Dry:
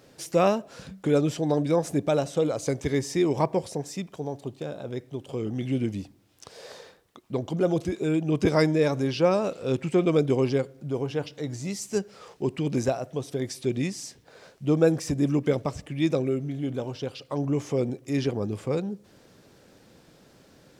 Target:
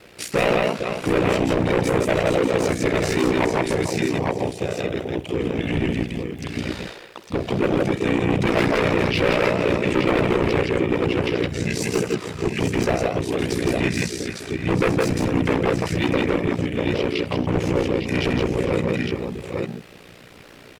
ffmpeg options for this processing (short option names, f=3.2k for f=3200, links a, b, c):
-filter_complex "[0:a]asplit=2[a][b];[b]aecho=0:1:60|163|450|743|803|853:0.168|0.708|0.188|0.119|0.141|0.447[c];[a][c]amix=inputs=2:normalize=0,asoftclip=type=hard:threshold=-22dB,equalizer=f=100:t=o:w=0.67:g=-4,equalizer=f=250:t=o:w=0.67:g=-5,equalizer=f=2.5k:t=o:w=0.67:g=9,equalizer=f=6.3k:t=o:w=0.67:g=-5,asplit=2[d][e];[e]asetrate=35002,aresample=44100,atempo=1.25992,volume=-3dB[f];[d][f]amix=inputs=2:normalize=0,aeval=exprs='val(0)*sin(2*PI*30*n/s)':c=same,asplit=2[g][h];[h]alimiter=limit=-24dB:level=0:latency=1,volume=-2dB[i];[g][i]amix=inputs=2:normalize=0,volume=4.5dB"